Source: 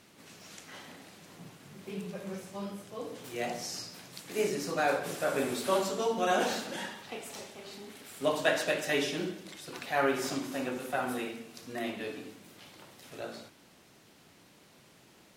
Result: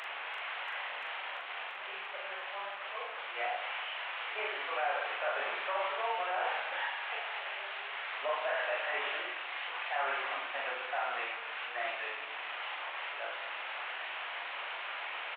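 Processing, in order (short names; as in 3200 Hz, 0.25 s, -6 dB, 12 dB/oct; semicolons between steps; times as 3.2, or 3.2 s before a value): delta modulation 16 kbps, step -36 dBFS; HPF 690 Hz 24 dB/oct; limiter -30 dBFS, peak gain reduction 7 dB; doubler 41 ms -3 dB; on a send: thin delay 0.342 s, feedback 78%, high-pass 2000 Hz, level -8 dB; on the sum: gain +3 dB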